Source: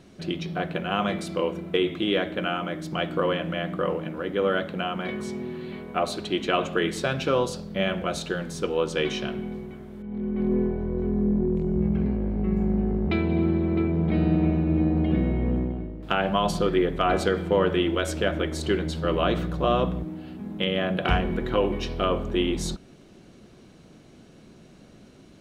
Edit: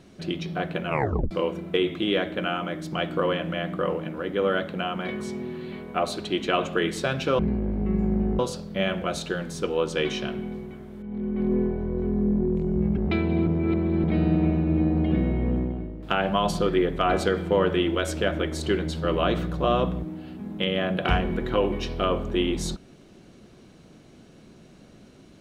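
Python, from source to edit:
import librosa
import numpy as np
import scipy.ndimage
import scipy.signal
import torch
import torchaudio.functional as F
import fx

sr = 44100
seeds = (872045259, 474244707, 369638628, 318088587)

y = fx.edit(x, sr, fx.tape_stop(start_s=0.86, length_s=0.45),
    fx.move(start_s=11.97, length_s=1.0, to_s=7.39),
    fx.reverse_span(start_s=13.47, length_s=0.57), tone=tone)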